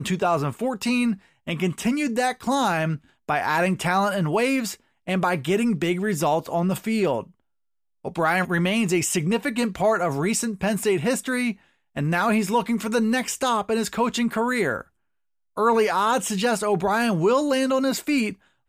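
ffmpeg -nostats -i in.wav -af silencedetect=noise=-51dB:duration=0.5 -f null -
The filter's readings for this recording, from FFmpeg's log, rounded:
silence_start: 7.31
silence_end: 8.04 | silence_duration: 0.73
silence_start: 14.87
silence_end: 15.56 | silence_duration: 0.69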